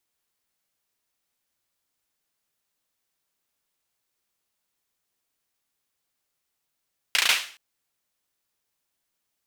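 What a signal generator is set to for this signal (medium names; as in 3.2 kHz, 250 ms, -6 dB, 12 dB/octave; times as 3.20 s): hand clap length 0.42 s, bursts 5, apart 35 ms, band 2.5 kHz, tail 0.43 s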